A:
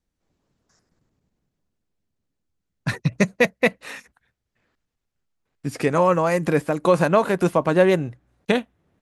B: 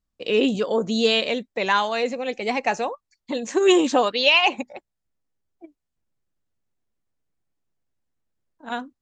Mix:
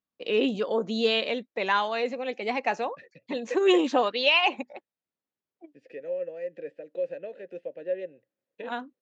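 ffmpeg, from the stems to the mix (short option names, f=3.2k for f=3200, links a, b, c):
-filter_complex "[0:a]asplit=3[a][b][c];[a]bandpass=f=530:t=q:w=8,volume=0dB[d];[b]bandpass=f=1.84k:t=q:w=8,volume=-6dB[e];[c]bandpass=f=2.48k:t=q:w=8,volume=-9dB[f];[d][e][f]amix=inputs=3:normalize=0,equalizer=f=1.2k:t=o:w=2.7:g=-12,adelay=100,volume=-3dB[g];[1:a]volume=-4dB[h];[g][h]amix=inputs=2:normalize=0,highpass=200,lowpass=4.2k"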